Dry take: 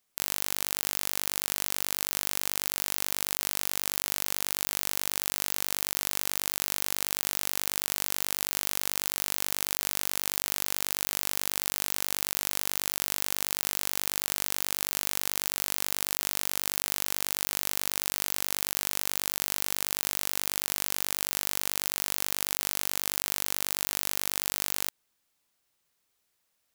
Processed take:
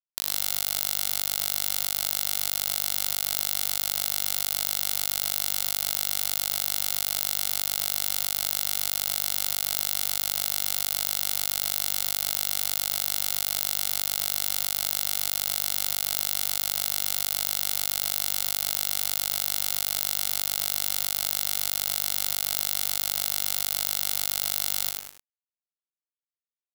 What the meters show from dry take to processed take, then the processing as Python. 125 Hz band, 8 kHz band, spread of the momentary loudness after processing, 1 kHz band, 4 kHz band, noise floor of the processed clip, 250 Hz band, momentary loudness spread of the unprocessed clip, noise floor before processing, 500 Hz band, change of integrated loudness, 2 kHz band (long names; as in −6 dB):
+1.0 dB, +3.0 dB, 0 LU, 0.0 dB, +4.5 dB, below −85 dBFS, −4.0 dB, 0 LU, −76 dBFS, −1.0 dB, +3.5 dB, −1.5 dB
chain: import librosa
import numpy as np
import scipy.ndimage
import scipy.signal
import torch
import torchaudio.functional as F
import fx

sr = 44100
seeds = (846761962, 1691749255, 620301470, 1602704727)

p1 = fx.peak_eq(x, sr, hz=4100.0, db=6.0, octaves=0.91)
p2 = fx.notch(p1, sr, hz=4400.0, q=24.0)
p3 = fx.quant_companded(p2, sr, bits=2)
p4 = fx.high_shelf(p3, sr, hz=6400.0, db=5.0)
p5 = p4 + fx.room_early_taps(p4, sr, ms=(60, 75), db=(-15.5, -11.5), dry=0)
p6 = fx.echo_crushed(p5, sr, ms=103, feedback_pct=35, bits=5, wet_db=-4.0)
y = p6 * 10.0 ** (-4.5 / 20.0)